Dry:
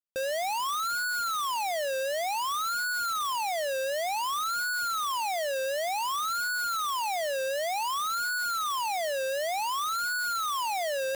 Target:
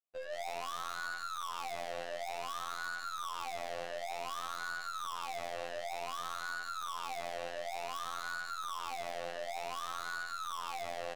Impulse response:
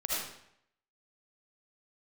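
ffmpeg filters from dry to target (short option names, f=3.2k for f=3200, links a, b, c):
-filter_complex "[0:a]asplit=3[a][b][c];[a]bandpass=f=730:t=q:w=8,volume=0dB[d];[b]bandpass=f=1.09k:t=q:w=8,volume=-6dB[e];[c]bandpass=f=2.44k:t=q:w=8,volume=-9dB[f];[d][e][f]amix=inputs=3:normalize=0,aecho=1:1:174|348|522|696|870:0.398|0.179|0.0806|0.0363|0.0163,asplit=2[g][h];[1:a]atrim=start_sample=2205,afade=t=out:st=0.22:d=0.01,atrim=end_sample=10143[i];[h][i]afir=irnorm=-1:irlink=0,volume=-8.5dB[j];[g][j]amix=inputs=2:normalize=0,adynamicequalizer=threshold=0.00355:dfrequency=1500:dqfactor=1.1:tfrequency=1500:tqfactor=1.1:attack=5:release=100:ratio=0.375:range=3:mode=boostabove:tftype=bell,aeval=exprs='(tanh(224*val(0)+0.25)-tanh(0.25))/224':c=same,afftfilt=real='hypot(re,im)*cos(PI*b)':imag='0':win_size=2048:overlap=0.75,volume=10.5dB"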